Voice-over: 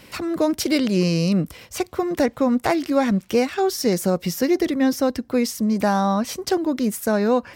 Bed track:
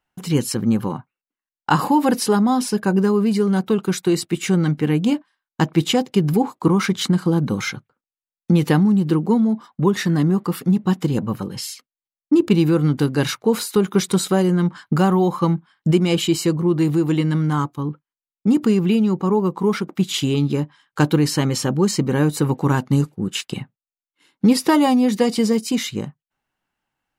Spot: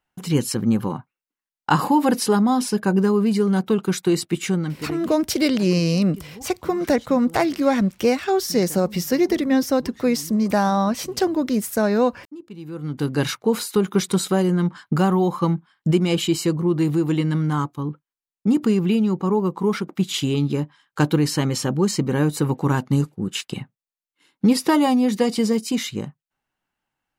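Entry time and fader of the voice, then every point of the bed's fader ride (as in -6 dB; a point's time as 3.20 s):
4.70 s, +0.5 dB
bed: 4.41 s -1 dB
5.34 s -23.5 dB
12.53 s -23.5 dB
13.11 s -2 dB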